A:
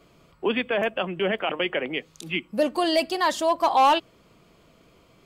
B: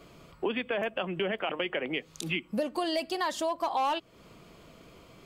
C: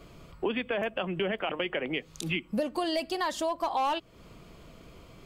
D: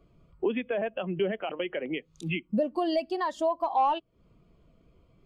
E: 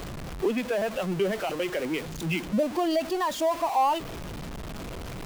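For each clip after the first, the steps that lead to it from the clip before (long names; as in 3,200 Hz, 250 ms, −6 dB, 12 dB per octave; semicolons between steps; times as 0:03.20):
downward compressor 4 to 1, threshold −33 dBFS, peak gain reduction 14.5 dB; level +3.5 dB
low-shelf EQ 92 Hz +11 dB
every bin expanded away from the loudest bin 1.5 to 1
converter with a step at zero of −31 dBFS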